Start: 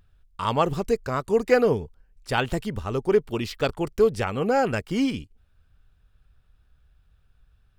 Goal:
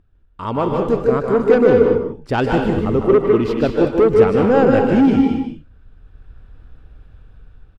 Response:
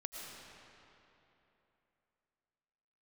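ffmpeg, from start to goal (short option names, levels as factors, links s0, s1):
-filter_complex "[0:a]lowpass=f=1300:p=1,equalizer=f=300:t=o:w=0.87:g=7.5,dynaudnorm=f=310:g=5:m=5.62,asoftclip=type=tanh:threshold=0.335,aecho=1:1:154:0.473[s0];[1:a]atrim=start_sample=2205,afade=t=out:st=0.23:d=0.01,atrim=end_sample=10584,asetrate=32634,aresample=44100[s1];[s0][s1]afir=irnorm=-1:irlink=0,volume=1.58"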